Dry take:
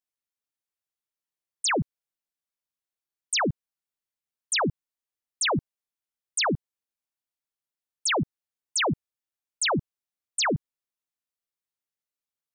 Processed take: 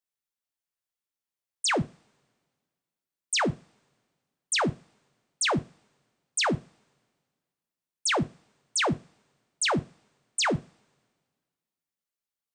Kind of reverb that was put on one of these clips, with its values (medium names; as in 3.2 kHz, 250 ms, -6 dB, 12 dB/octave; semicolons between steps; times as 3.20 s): two-slope reverb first 0.29 s, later 1.8 s, from -28 dB, DRR 12 dB; trim -1 dB